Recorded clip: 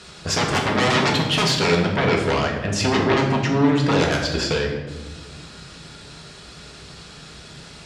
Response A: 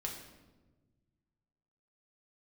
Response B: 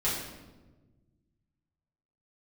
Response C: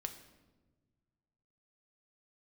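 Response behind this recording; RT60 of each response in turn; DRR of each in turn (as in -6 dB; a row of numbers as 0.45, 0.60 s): A; 1.3, 1.2, 1.3 s; -0.5, -9.5, 6.5 dB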